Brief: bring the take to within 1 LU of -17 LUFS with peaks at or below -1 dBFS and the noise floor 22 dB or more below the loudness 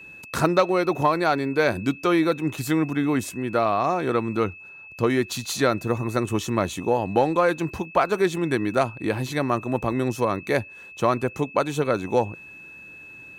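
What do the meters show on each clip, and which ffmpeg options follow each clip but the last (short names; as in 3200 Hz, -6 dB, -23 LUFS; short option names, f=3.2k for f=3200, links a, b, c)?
steady tone 2600 Hz; tone level -41 dBFS; loudness -24.0 LUFS; peak -6.5 dBFS; loudness target -17.0 LUFS
-> -af "bandreject=f=2.6k:w=30"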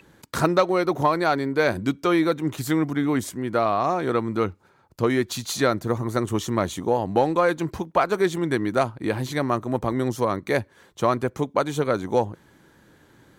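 steady tone none; loudness -24.0 LUFS; peak -7.0 dBFS; loudness target -17.0 LUFS
-> -af "volume=7dB,alimiter=limit=-1dB:level=0:latency=1"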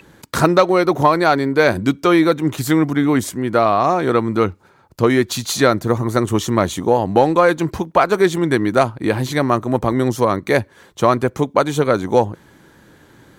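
loudness -17.0 LUFS; peak -1.0 dBFS; noise floor -51 dBFS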